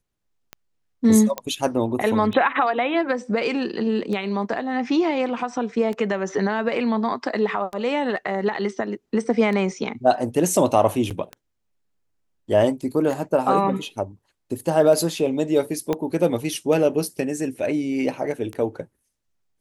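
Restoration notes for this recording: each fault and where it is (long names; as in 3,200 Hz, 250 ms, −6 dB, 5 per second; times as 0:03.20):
scratch tick 33 1/3 rpm −18 dBFS
0:01.38: click −11 dBFS
0:11.10–0:11.11: drop-out 7.4 ms
0:15.93: click −11 dBFS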